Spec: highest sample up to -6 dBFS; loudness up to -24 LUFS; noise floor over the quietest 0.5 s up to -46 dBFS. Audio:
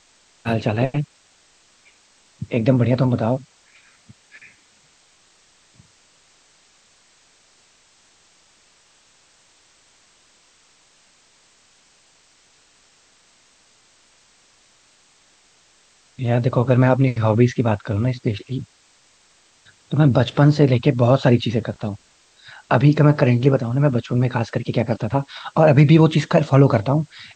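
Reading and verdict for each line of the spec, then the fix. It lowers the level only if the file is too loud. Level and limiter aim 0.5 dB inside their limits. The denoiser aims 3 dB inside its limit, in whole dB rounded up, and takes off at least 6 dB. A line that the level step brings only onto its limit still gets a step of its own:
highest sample -1.5 dBFS: fail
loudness -18.5 LUFS: fail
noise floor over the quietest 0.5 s -57 dBFS: OK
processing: gain -6 dB

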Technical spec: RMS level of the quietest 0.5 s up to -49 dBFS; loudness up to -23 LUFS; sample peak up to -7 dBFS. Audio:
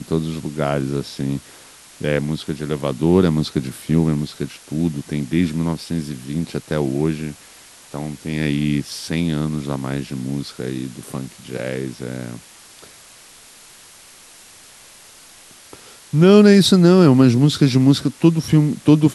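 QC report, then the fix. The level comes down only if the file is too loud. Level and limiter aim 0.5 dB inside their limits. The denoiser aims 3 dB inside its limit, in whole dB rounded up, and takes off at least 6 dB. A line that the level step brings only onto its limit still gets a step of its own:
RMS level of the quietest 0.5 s -45 dBFS: fail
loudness -18.5 LUFS: fail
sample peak -2.0 dBFS: fail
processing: gain -5 dB; limiter -7.5 dBFS

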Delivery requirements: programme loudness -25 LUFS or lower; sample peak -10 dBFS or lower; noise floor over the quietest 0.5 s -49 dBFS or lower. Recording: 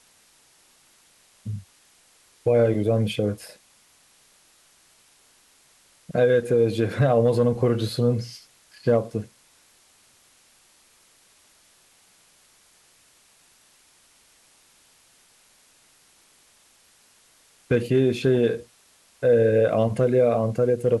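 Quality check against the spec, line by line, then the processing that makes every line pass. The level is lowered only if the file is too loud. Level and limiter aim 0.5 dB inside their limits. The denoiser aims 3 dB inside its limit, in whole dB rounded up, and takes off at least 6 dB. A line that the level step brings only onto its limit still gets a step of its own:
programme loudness -22.0 LUFS: fail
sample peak -9.0 dBFS: fail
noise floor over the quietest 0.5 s -59 dBFS: OK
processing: gain -3.5 dB

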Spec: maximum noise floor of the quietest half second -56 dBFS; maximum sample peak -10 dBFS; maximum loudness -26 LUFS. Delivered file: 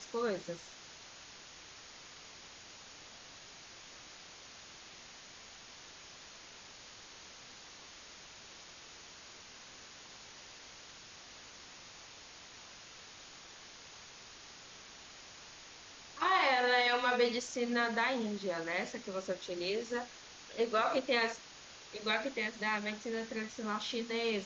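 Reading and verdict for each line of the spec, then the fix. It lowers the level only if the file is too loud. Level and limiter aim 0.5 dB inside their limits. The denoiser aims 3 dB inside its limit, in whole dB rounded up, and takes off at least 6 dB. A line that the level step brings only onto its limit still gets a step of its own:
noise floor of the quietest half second -53 dBFS: fail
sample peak -18.5 dBFS: OK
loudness -34.0 LUFS: OK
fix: denoiser 6 dB, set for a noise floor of -53 dBFS

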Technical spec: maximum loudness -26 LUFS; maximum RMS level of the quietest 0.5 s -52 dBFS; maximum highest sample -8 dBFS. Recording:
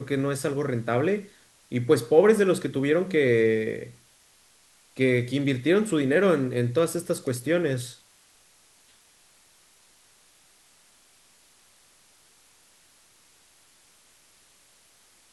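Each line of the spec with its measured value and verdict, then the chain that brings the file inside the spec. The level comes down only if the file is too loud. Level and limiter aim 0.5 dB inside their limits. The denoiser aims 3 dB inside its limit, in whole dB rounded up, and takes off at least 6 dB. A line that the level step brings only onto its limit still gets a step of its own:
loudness -24.0 LUFS: fail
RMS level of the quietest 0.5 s -59 dBFS: OK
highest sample -5.0 dBFS: fail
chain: gain -2.5 dB; limiter -8.5 dBFS

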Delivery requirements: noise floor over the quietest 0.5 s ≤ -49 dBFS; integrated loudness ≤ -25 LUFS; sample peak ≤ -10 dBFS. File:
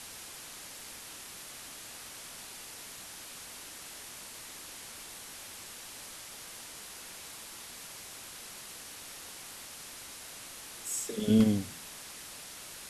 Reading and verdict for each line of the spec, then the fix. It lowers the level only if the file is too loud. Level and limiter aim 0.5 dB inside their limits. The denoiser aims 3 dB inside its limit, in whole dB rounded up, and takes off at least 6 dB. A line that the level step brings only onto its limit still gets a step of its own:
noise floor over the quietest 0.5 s -47 dBFS: fail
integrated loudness -38.0 LUFS: OK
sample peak -12.5 dBFS: OK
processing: denoiser 6 dB, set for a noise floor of -47 dBFS

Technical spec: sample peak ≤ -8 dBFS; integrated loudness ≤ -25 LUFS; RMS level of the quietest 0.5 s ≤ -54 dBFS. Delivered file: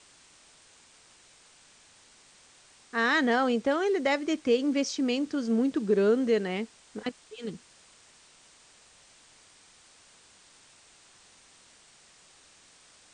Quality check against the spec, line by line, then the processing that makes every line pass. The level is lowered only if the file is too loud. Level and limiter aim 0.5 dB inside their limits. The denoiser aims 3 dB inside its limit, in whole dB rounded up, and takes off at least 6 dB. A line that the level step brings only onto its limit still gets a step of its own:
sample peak -14.0 dBFS: OK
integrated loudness -27.5 LUFS: OK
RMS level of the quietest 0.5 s -58 dBFS: OK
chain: none

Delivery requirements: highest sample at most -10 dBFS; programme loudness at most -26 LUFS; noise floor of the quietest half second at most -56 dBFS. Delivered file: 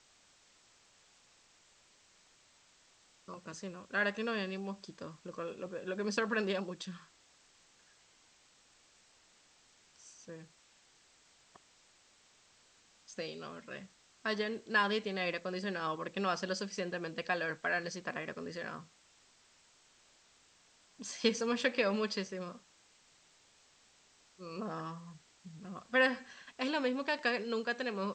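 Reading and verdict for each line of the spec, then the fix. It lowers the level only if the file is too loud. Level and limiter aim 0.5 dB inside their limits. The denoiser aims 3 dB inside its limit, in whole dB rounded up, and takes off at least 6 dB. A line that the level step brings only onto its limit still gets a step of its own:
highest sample -15.0 dBFS: OK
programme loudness -36.0 LUFS: OK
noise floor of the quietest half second -66 dBFS: OK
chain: none

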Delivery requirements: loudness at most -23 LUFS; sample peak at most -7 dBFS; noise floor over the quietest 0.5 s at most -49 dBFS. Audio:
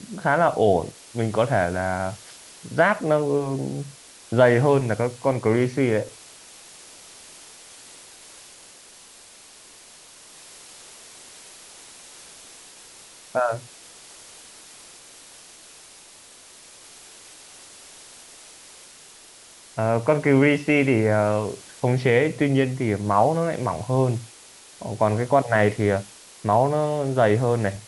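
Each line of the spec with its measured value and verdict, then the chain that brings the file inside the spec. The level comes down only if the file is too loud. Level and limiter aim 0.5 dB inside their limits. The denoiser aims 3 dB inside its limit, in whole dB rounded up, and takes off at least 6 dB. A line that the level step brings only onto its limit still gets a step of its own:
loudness -22.0 LUFS: fail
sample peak -4.0 dBFS: fail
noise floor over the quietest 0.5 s -48 dBFS: fail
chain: gain -1.5 dB; limiter -7.5 dBFS

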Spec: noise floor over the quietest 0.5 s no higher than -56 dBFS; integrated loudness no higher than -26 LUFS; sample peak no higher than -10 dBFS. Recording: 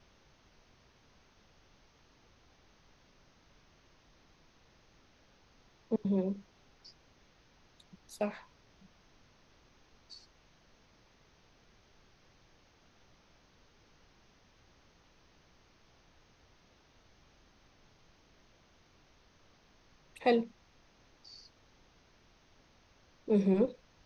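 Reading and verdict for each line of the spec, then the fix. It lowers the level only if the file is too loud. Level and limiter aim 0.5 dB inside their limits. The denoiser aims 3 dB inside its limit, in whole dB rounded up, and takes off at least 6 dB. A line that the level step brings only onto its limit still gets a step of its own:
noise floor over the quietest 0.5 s -65 dBFS: OK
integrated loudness -33.0 LUFS: OK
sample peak -16.0 dBFS: OK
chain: none

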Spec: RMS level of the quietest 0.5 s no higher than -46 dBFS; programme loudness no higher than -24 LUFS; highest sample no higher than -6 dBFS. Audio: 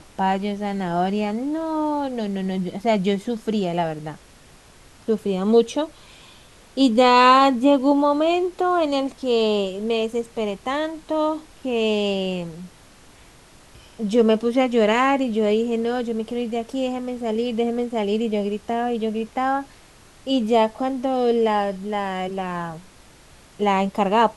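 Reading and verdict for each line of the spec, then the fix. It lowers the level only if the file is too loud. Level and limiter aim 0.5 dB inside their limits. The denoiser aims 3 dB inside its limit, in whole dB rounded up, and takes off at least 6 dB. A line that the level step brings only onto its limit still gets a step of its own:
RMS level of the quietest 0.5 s -49 dBFS: OK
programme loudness -21.5 LUFS: fail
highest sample -4.0 dBFS: fail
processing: gain -3 dB

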